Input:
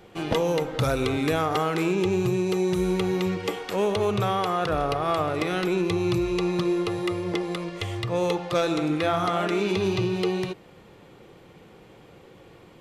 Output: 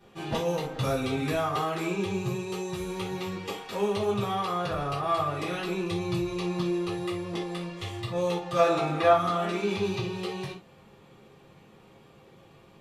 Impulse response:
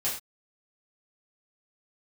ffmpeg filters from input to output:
-filter_complex "[0:a]asettb=1/sr,asplit=3[s0][s1][s2];[s0]atrim=end=8.584[s3];[s1]atrim=start=8.58:end=9.13,asetpts=PTS-STARTPTS,afade=t=in:d=0.004:c=qsin,afade=t=out:st=0.546:d=0.004:c=qsin,equalizer=f=860:t=o:w=2:g=10.5[s4];[s2]atrim=start=9.126[s5];[s3][s4]acrossfade=d=0.004:c1=hsin:c2=qsin[s6];[s6][s5]acrossfade=d=0.004:c1=qsin:c2=hsin[s7];[1:a]atrim=start_sample=2205,asetrate=66150,aresample=44100[s8];[s7][s8]afir=irnorm=-1:irlink=0,volume=0.447"

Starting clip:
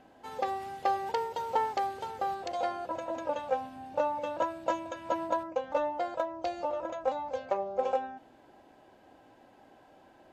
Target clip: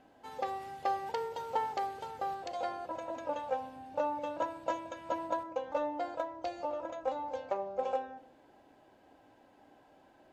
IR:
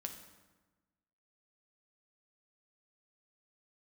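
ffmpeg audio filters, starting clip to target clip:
-filter_complex "[0:a]asplit=2[s0][s1];[1:a]atrim=start_sample=2205,asetrate=66150,aresample=44100[s2];[s1][s2]afir=irnorm=-1:irlink=0,volume=1.33[s3];[s0][s3]amix=inputs=2:normalize=0,volume=0.398"

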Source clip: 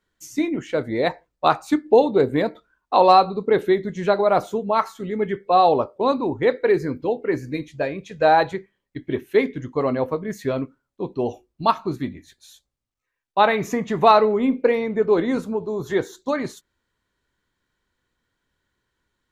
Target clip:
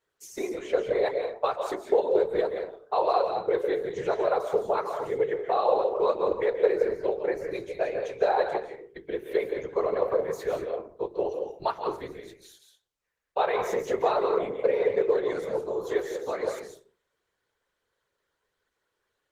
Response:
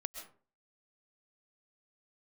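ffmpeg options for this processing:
-filter_complex "[0:a]acompressor=threshold=0.0631:ratio=3[s0];[1:a]atrim=start_sample=2205,afade=t=out:st=0.44:d=0.01,atrim=end_sample=19845,asetrate=35721,aresample=44100[s1];[s0][s1]afir=irnorm=-1:irlink=0,afftfilt=real='hypot(re,im)*cos(2*PI*random(0))':imag='hypot(re,im)*sin(2*PI*random(1))':win_size=512:overlap=0.75,lowshelf=f=330:t=q:w=3:g=-8.5,bandreject=f=50:t=h:w=6,bandreject=f=100:t=h:w=6,bandreject=f=150:t=h:w=6,bandreject=f=200:t=h:w=6,bandreject=f=250:t=h:w=6,bandreject=f=300:t=h:w=6,bandreject=f=350:t=h:w=6,bandreject=f=400:t=h:w=6,bandreject=f=450:t=h:w=6,volume=1.68" -ar 48000 -c:a libopus -b:a 20k

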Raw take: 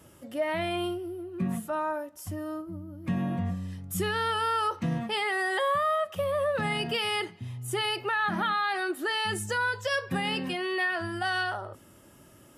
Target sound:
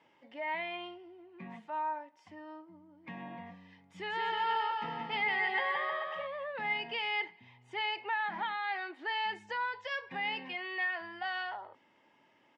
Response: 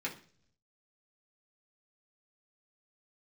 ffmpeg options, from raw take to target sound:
-filter_complex "[0:a]highpass=350,equalizer=f=360:t=q:w=4:g=-6,equalizer=f=590:t=q:w=4:g=-6,equalizer=f=910:t=q:w=4:g=9,equalizer=f=1300:t=q:w=4:g=-9,equalizer=f=2100:t=q:w=4:g=9,equalizer=f=4000:t=q:w=4:g=-3,lowpass=f=4200:w=0.5412,lowpass=f=4200:w=1.3066,asplit=3[s0][s1][s2];[s0]afade=t=out:st=4.09:d=0.02[s3];[s1]aecho=1:1:170|314.5|437.3|541.7|630.5:0.631|0.398|0.251|0.158|0.1,afade=t=in:st=4.09:d=0.02,afade=t=out:st=6.26:d=0.02[s4];[s2]afade=t=in:st=6.26:d=0.02[s5];[s3][s4][s5]amix=inputs=3:normalize=0,volume=0.422"

